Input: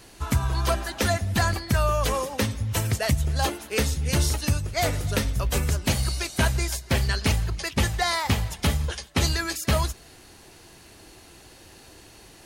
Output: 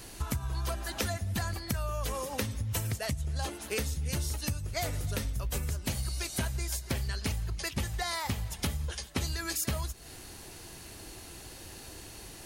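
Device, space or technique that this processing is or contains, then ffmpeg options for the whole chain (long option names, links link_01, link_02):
ASMR close-microphone chain: -filter_complex "[0:a]lowshelf=frequency=140:gain=5,acompressor=threshold=-31dB:ratio=6,highshelf=frequency=7300:gain=7.5,asettb=1/sr,asplit=3[link_01][link_02][link_03];[link_01]atrim=end=3.064[link_04];[link_02]atrim=start=3.06:end=3.67,asetpts=PTS-STARTPTS,afade=type=in:duration=0.004:curve=qsin,afade=type=out:start_time=0.606:duration=0.004:curve=qsin,lowpass=11000[link_05];[link_03]atrim=start=3.666[link_06];[link_04][link_05]acrossfade=duration=0.004:curve1=hsin:curve2=qsin[link_07];[link_07][link_06]acrossfade=duration=0.004:curve1=qsin:curve2=hsin"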